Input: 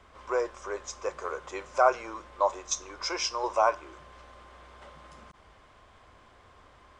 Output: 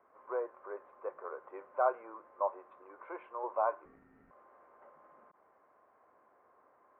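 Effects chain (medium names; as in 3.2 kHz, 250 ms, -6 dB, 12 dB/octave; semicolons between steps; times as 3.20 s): high-pass 400 Hz 12 dB/octave; 3.85–4.31 s: ring modulator 780 Hz; Gaussian low-pass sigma 6 samples; trim -5 dB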